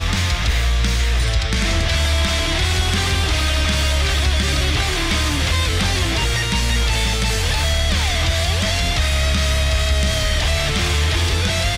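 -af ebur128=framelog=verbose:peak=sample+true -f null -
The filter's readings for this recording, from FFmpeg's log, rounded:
Integrated loudness:
  I:         -18.2 LUFS
  Threshold: -28.2 LUFS
Loudness range:
  LRA:         0.4 LU
  Threshold: -38.2 LUFS
  LRA low:   -18.4 LUFS
  LRA high:  -17.9 LUFS
Sample peak:
  Peak:       -8.3 dBFS
True peak:
  Peak:       -8.2 dBFS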